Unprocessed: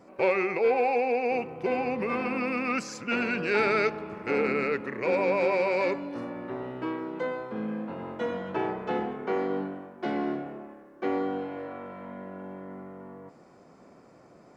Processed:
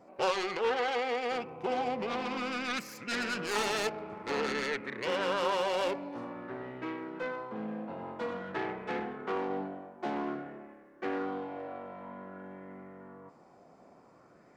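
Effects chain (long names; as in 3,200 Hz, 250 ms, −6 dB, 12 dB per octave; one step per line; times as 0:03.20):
phase distortion by the signal itself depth 0.31 ms
auto-filter bell 0.51 Hz 700–2,100 Hz +7 dB
level −6 dB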